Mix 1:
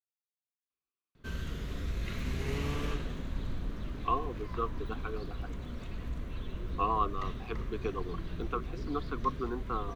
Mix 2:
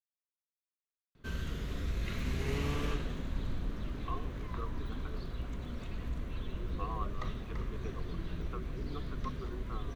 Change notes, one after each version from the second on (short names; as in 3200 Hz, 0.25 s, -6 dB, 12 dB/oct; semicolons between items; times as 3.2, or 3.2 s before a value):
speech -11.5 dB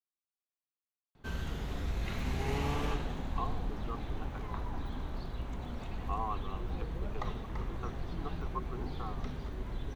speech: entry -0.70 s; master: add bell 810 Hz +14 dB 0.39 oct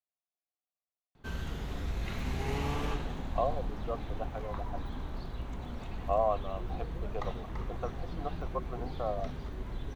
speech: remove Chebyshev band-stop 400–880 Hz, order 2